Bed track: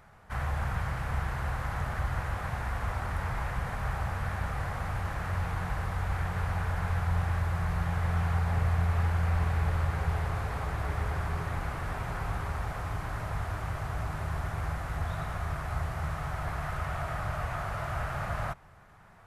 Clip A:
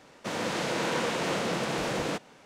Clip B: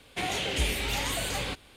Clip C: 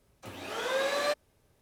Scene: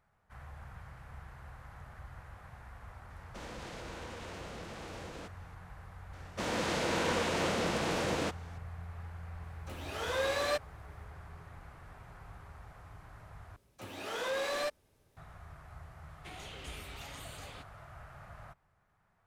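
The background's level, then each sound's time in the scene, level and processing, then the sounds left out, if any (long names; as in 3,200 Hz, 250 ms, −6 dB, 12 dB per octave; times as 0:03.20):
bed track −17.5 dB
0:03.10: mix in A −11 dB + downward compressor, threshold −31 dBFS
0:06.13: mix in A −2.5 dB
0:09.44: mix in C −2.5 dB
0:13.56: overwrite with C −2 dB + soft clipping −27 dBFS
0:16.08: mix in B −17.5 dB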